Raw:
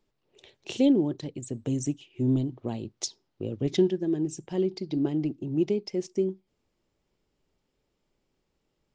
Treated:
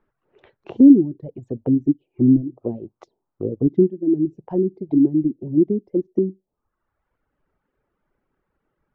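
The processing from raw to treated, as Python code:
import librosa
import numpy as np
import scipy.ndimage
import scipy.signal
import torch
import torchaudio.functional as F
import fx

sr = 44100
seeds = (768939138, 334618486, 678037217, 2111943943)

y = fx.dereverb_blind(x, sr, rt60_s=1.1)
y = fx.envelope_lowpass(y, sr, base_hz=290.0, top_hz=1500.0, q=2.7, full_db=-26.5, direction='down')
y = F.gain(torch.from_numpy(y), 4.5).numpy()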